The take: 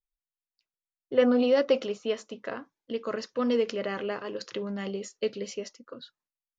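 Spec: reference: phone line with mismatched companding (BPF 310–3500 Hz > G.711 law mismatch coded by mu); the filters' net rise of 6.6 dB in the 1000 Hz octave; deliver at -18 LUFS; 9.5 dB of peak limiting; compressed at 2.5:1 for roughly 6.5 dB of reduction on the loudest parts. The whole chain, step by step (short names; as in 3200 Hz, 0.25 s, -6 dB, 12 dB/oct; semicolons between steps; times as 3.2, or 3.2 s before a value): bell 1000 Hz +9 dB; compressor 2.5:1, threshold -25 dBFS; limiter -24 dBFS; BPF 310–3500 Hz; G.711 law mismatch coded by mu; gain +17 dB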